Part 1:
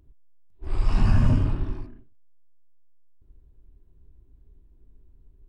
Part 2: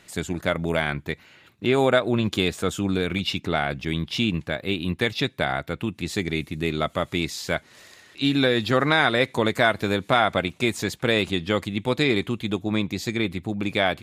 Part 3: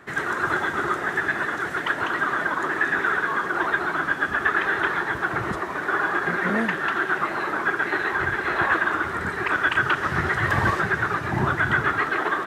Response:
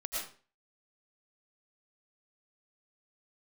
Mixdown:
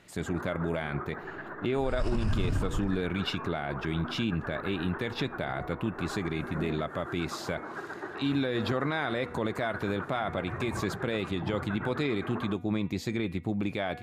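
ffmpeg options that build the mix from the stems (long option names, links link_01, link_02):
-filter_complex "[0:a]highshelf=frequency=4200:gain=8.5,adelay=1150,volume=-4dB[link_01];[1:a]bandreject=frequency=242.2:width_type=h:width=4,bandreject=frequency=484.4:width_type=h:width=4,bandreject=frequency=726.6:width_type=h:width=4,bandreject=frequency=968.8:width_type=h:width=4,bandreject=frequency=1211:width_type=h:width=4,bandreject=frequency=1453.2:width_type=h:width=4,bandreject=frequency=1695.4:width_type=h:width=4,bandreject=frequency=1937.6:width_type=h:width=4,bandreject=frequency=2179.8:width_type=h:width=4,bandreject=frequency=2422:width_type=h:width=4,bandreject=frequency=2664.2:width_type=h:width=4,volume=-1dB[link_02];[2:a]lowpass=1200,adelay=100,volume=-10dB[link_03];[link_02][link_03]amix=inputs=2:normalize=0,highshelf=frequency=2400:gain=-9,alimiter=limit=-14.5dB:level=0:latency=1:release=185,volume=0dB[link_04];[link_01][link_04]amix=inputs=2:normalize=0,alimiter=limit=-20dB:level=0:latency=1:release=52"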